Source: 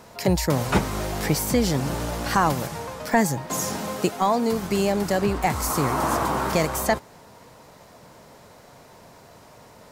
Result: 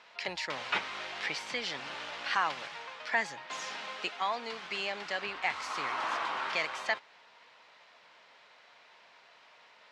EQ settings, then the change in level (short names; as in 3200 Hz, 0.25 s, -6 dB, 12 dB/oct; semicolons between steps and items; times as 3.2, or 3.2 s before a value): LPF 3000 Hz 24 dB/oct; differentiator; tilt +2 dB/oct; +7.5 dB